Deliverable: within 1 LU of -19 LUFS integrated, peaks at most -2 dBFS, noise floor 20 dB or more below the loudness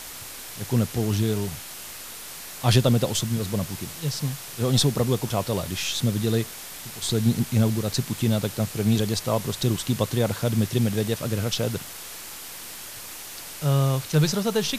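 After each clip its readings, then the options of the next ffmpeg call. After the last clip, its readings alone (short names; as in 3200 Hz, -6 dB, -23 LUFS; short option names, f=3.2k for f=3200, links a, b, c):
noise floor -39 dBFS; noise floor target -45 dBFS; loudness -24.5 LUFS; peak -6.0 dBFS; loudness target -19.0 LUFS
-> -af "afftdn=nr=6:nf=-39"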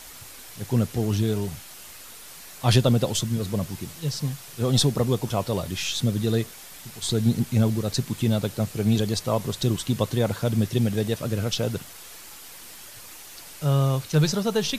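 noise floor -43 dBFS; noise floor target -45 dBFS
-> -af "afftdn=nr=6:nf=-43"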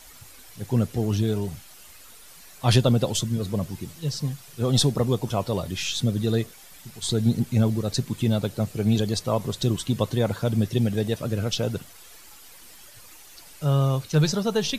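noise floor -48 dBFS; loudness -25.0 LUFS; peak -6.0 dBFS; loudness target -19.0 LUFS
-> -af "volume=6dB,alimiter=limit=-2dB:level=0:latency=1"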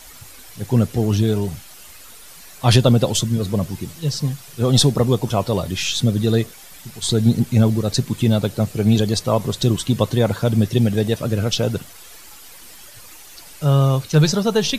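loudness -19.0 LUFS; peak -2.0 dBFS; noise floor -42 dBFS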